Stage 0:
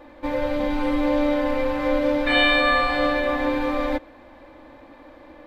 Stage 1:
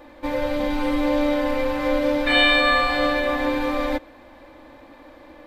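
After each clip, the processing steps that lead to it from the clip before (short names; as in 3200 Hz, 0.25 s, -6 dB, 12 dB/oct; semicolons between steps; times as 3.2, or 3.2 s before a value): high shelf 4200 Hz +7.5 dB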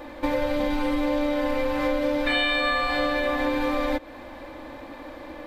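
compressor 5:1, threshold -28 dBFS, peak gain reduction 13.5 dB; gain +6 dB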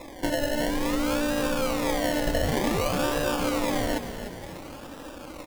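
decimation with a swept rate 29×, swing 60% 0.55 Hz; frequency-shifting echo 0.297 s, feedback 47%, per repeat -57 Hz, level -10 dB; gain -2 dB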